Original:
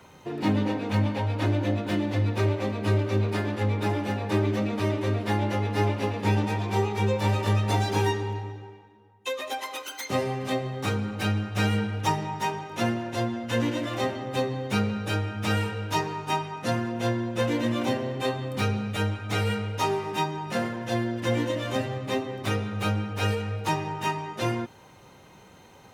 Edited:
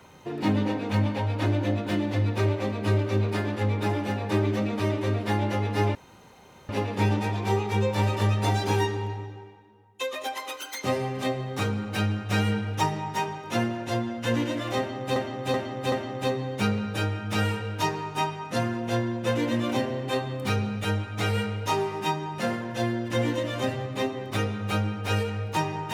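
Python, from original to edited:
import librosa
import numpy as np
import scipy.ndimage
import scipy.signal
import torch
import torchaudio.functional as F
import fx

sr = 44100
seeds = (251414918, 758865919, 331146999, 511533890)

y = fx.edit(x, sr, fx.insert_room_tone(at_s=5.95, length_s=0.74),
    fx.repeat(start_s=14.04, length_s=0.38, count=4), tone=tone)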